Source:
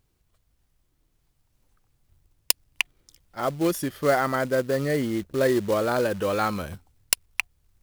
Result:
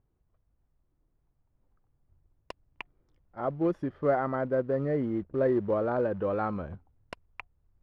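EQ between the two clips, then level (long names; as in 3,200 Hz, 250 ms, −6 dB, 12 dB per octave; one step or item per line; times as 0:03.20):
low-pass filter 1,100 Hz 12 dB per octave
−3.5 dB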